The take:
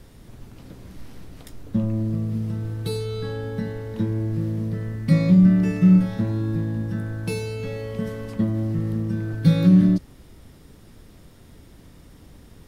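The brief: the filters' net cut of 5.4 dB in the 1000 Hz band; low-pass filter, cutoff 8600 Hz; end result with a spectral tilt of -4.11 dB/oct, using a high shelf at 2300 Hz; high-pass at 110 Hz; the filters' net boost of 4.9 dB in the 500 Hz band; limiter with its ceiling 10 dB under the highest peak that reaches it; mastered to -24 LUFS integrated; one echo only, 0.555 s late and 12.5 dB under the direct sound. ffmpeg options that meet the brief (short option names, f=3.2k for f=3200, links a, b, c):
-af "highpass=110,lowpass=8.6k,equalizer=f=500:t=o:g=8,equalizer=f=1k:t=o:g=-8.5,highshelf=f=2.3k:g=-8,alimiter=limit=-15.5dB:level=0:latency=1,aecho=1:1:555:0.237,volume=2dB"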